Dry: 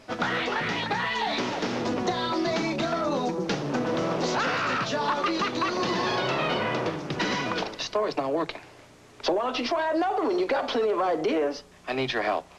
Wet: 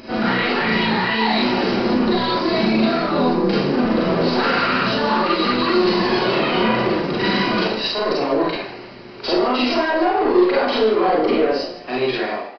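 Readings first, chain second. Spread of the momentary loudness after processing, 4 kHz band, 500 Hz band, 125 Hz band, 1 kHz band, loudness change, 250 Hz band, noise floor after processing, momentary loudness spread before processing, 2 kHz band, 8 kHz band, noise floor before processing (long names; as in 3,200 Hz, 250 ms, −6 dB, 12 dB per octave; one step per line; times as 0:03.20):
5 LU, +8.5 dB, +8.5 dB, +8.0 dB, +7.0 dB, +8.5 dB, +11.0 dB, −36 dBFS, 4 LU, +7.5 dB, can't be measured, −52 dBFS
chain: fade-out on the ending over 0.96 s
high-shelf EQ 4,200 Hz +8.5 dB
notch filter 3,500 Hz, Q 6.3
in parallel at +2 dB: brickwall limiter −22.5 dBFS, peak gain reduction 8.5 dB
on the sum: upward compression, threshold −39 dBFS
hollow resonant body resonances 230/360/3,900 Hz, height 8 dB
soft clipping −16.5 dBFS, distortion −13 dB
on a send: echo with shifted repeats 150 ms, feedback 31%, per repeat +73 Hz, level −15 dB
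on the sum: four-comb reverb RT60 0.46 s, combs from 32 ms, DRR −5.5 dB
downsampling to 11,025 Hz
level −3 dB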